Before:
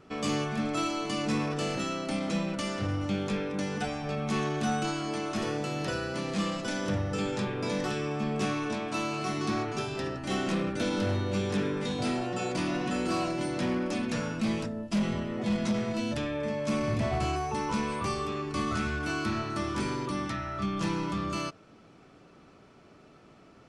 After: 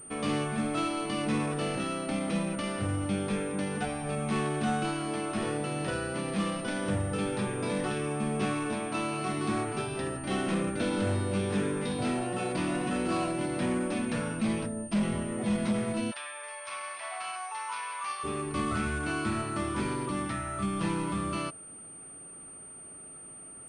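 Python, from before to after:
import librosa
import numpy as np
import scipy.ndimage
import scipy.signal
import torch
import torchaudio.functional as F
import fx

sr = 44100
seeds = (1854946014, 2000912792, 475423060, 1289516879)

y = fx.highpass(x, sr, hz=880.0, slope=24, at=(16.1, 18.23), fade=0.02)
y = fx.pwm(y, sr, carrier_hz=8800.0)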